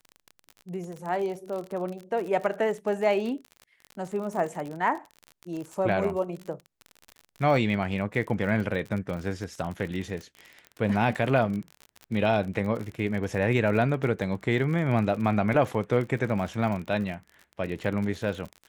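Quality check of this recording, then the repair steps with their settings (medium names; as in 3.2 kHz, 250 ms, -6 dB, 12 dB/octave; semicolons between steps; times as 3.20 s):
crackle 42 per s -33 dBFS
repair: de-click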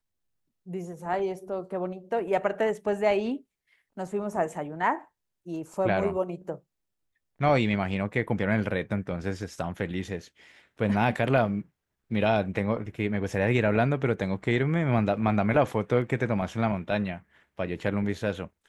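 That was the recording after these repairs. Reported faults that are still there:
nothing left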